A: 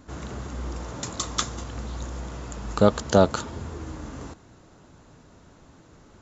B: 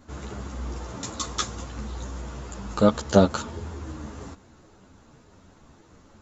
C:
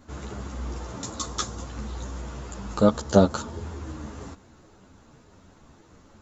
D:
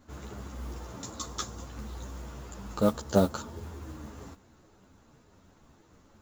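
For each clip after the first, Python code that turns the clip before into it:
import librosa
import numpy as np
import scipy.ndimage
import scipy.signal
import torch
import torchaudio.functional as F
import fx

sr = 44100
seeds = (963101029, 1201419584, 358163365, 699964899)

y1 = fx.ensemble(x, sr)
y1 = F.gain(torch.from_numpy(y1), 2.0).numpy()
y2 = fx.dynamic_eq(y1, sr, hz=2400.0, q=1.2, threshold_db=-47.0, ratio=4.0, max_db=-6)
y3 = fx.mod_noise(y2, sr, seeds[0], snr_db=24)
y3 = F.gain(torch.from_numpy(y3), -6.0).numpy()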